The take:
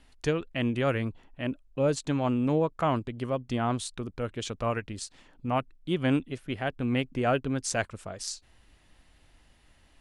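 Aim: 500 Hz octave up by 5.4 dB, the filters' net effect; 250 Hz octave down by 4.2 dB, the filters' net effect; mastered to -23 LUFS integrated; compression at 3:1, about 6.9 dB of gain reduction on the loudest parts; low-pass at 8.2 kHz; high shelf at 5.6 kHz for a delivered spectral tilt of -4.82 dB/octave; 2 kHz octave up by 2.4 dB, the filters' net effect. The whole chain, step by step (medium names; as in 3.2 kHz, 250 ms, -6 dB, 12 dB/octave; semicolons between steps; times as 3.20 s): low-pass 8.2 kHz; peaking EQ 250 Hz -7.5 dB; peaking EQ 500 Hz +8 dB; peaking EQ 2 kHz +3.5 dB; treble shelf 5.6 kHz -5.5 dB; compression 3:1, threshold -26 dBFS; trim +9 dB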